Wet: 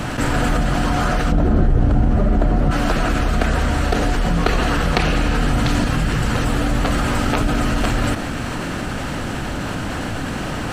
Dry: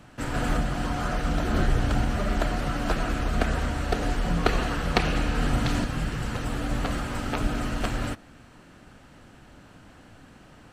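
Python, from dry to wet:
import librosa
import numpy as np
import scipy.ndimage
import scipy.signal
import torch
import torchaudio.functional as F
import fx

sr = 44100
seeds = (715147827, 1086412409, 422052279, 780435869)

y = fx.tilt_shelf(x, sr, db=9.5, hz=1200.0, at=(1.32, 2.71))
y = fx.env_flatten(y, sr, amount_pct=70)
y = y * 10.0 ** (-3.0 / 20.0)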